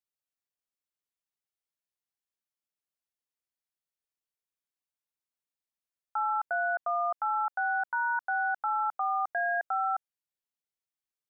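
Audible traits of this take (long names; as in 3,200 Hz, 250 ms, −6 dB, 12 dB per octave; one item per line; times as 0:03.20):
background noise floor −94 dBFS
spectral slope 0.0 dB per octave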